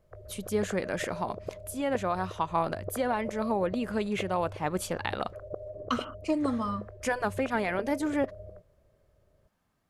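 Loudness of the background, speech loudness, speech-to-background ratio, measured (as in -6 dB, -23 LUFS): -42.5 LUFS, -31.5 LUFS, 11.0 dB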